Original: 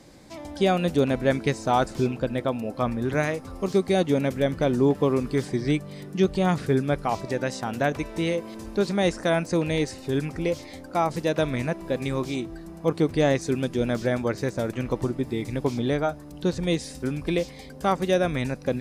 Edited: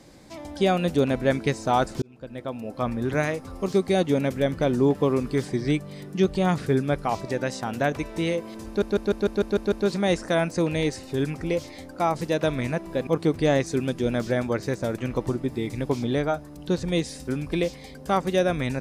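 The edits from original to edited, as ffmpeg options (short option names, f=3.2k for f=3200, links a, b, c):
-filter_complex "[0:a]asplit=10[a][b][c][d][e][f][g][h][i][j];[a]atrim=end=2.02,asetpts=PTS-STARTPTS,afade=t=out:st=2.016:d=0.004:c=hsin[k];[b]atrim=start=2.02:end=8.822,asetpts=PTS-STARTPTS,afade=t=in:d=0.96[l];[c]atrim=start=8.668:end=8.822[m];[d]atrim=start=8.668:end=8.822[n];[e]atrim=start=8.668:end=8.822[o];[f]atrim=start=8.668:end=8.822[p];[g]atrim=start=8.668:end=8.822[q];[h]atrim=start=8.668:end=8.822[r];[i]atrim=start=8.668:end=12.022[s];[j]atrim=start=12.818[t];[k][l]concat=n=2:v=0:a=1[u];[u][m]acrossfade=d=0.004:c1=hsin:c2=hsin[v];[v][n]acrossfade=d=0.004:c1=hsin:c2=hsin[w];[w][o]acrossfade=d=0.004:c1=hsin:c2=hsin[x];[x][p]acrossfade=d=0.004:c1=hsin:c2=hsin[y];[y][q]acrossfade=d=0.004:c1=hsin:c2=hsin[z];[z][r]acrossfade=d=0.004:c1=hsin:c2=hsin[aa];[aa][s]acrossfade=d=0.004:c1=hsin:c2=hsin[ab];[ab][t]acrossfade=d=0.004:c1=hsin:c2=hsin"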